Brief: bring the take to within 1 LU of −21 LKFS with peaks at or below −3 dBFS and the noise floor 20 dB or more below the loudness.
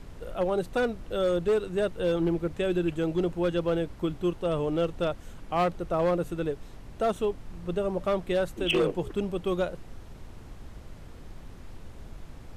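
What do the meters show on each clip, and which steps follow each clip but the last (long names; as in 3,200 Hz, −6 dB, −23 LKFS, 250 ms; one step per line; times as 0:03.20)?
share of clipped samples 1.2%; peaks flattened at −19.5 dBFS; background noise floor −46 dBFS; target noise floor −49 dBFS; integrated loudness −29.0 LKFS; sample peak −19.5 dBFS; target loudness −21.0 LKFS
→ clipped peaks rebuilt −19.5 dBFS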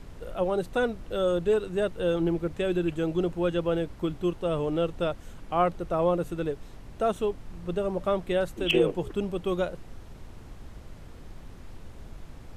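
share of clipped samples 0.0%; background noise floor −46 dBFS; target noise floor −49 dBFS
→ noise reduction from a noise print 6 dB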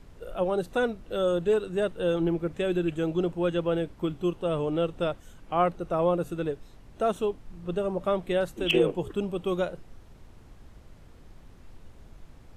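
background noise floor −52 dBFS; integrated loudness −28.5 LKFS; sample peak −11.5 dBFS; target loudness −21.0 LKFS
→ level +7.5 dB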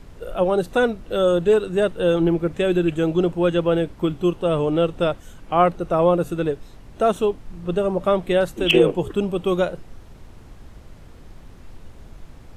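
integrated loudness −21.0 LKFS; sample peak −4.0 dBFS; background noise floor −44 dBFS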